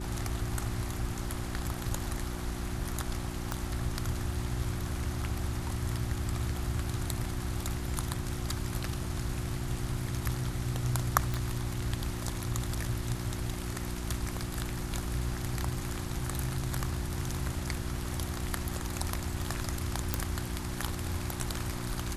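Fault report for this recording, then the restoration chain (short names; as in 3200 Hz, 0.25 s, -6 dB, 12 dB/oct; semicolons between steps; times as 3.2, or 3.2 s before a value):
hum 60 Hz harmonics 6 -39 dBFS
3.52 pop
11.34 pop -18 dBFS
20.14 pop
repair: de-click; de-hum 60 Hz, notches 6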